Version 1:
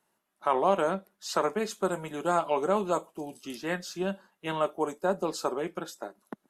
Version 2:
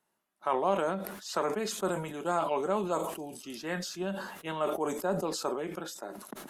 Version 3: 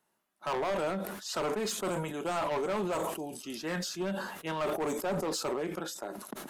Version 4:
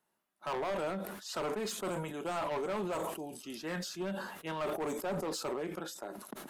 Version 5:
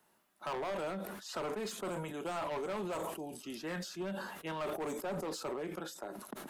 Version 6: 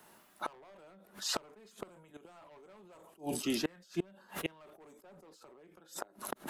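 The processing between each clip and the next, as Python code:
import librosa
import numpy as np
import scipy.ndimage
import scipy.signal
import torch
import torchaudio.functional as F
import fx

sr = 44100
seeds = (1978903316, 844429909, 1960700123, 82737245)

y1 = fx.sustainer(x, sr, db_per_s=51.0)
y1 = y1 * 10.0 ** (-4.0 / 20.0)
y2 = np.clip(y1, -10.0 ** (-30.0 / 20.0), 10.0 ** (-30.0 / 20.0))
y2 = y2 * 10.0 ** (2.0 / 20.0)
y3 = fx.peak_eq(y2, sr, hz=6300.0, db=-2.0, octaves=0.77)
y3 = y3 * 10.0 ** (-3.5 / 20.0)
y4 = fx.band_squash(y3, sr, depth_pct=40)
y4 = y4 * 10.0 ** (-2.5 / 20.0)
y5 = fx.gate_flip(y4, sr, shuts_db=-33.0, range_db=-30)
y5 = y5 * 10.0 ** (11.0 / 20.0)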